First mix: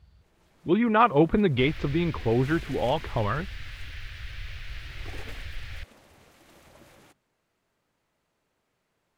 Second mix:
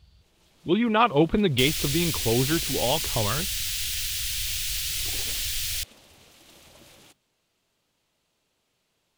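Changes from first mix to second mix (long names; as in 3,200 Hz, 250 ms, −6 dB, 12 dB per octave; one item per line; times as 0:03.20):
second sound: remove high-frequency loss of the air 330 metres
master: add high shelf with overshoot 2,400 Hz +7 dB, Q 1.5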